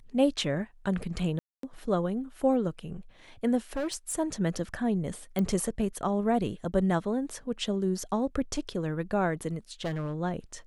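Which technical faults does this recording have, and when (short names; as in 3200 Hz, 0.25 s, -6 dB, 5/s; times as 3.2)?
1.39–1.63 gap 0.243 s
3.73–4.14 clipped -27.5 dBFS
5.39 pop -17 dBFS
9.84–10.15 clipped -27.5 dBFS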